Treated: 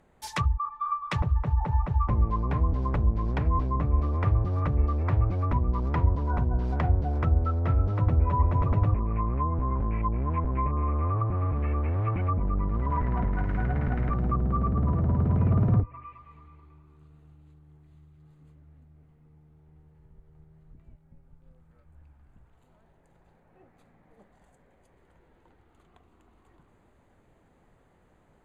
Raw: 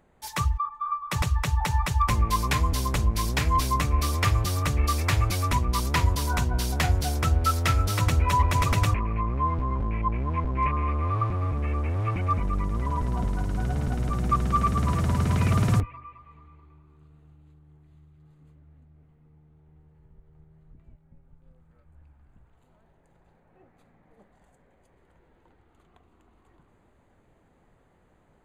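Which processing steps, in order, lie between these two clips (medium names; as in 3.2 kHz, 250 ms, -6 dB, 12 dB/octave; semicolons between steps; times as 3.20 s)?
low-pass that closes with the level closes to 770 Hz, closed at -21 dBFS; 12.92–14.14 s: peaking EQ 2 kHz +12 dB 0.92 oct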